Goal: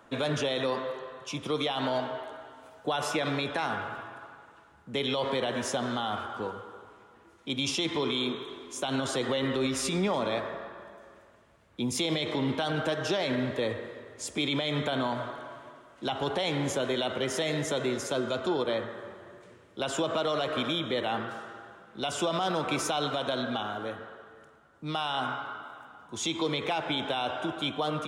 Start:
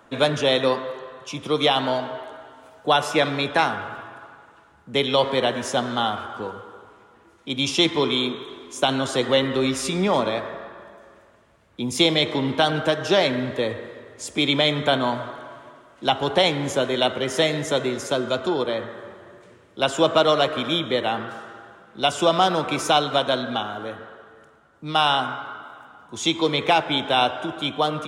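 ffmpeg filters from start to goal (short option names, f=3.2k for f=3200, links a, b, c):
-af "alimiter=limit=-16.5dB:level=0:latency=1:release=49,volume=-3.5dB"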